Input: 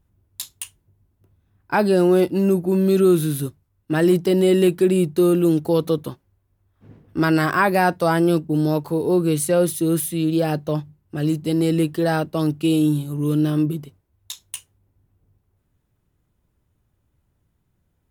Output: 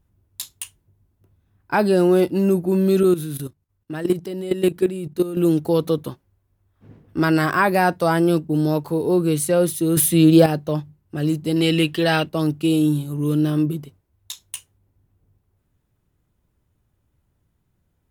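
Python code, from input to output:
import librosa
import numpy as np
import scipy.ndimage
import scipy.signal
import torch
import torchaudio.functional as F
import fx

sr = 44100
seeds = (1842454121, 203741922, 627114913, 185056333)

y = fx.level_steps(x, sr, step_db=14, at=(3.03, 5.37))
y = fx.peak_eq(y, sr, hz=2900.0, db=14.5, octaves=1.2, at=(11.56, 12.29))
y = fx.edit(y, sr, fx.clip_gain(start_s=9.97, length_s=0.49, db=8.0), tone=tone)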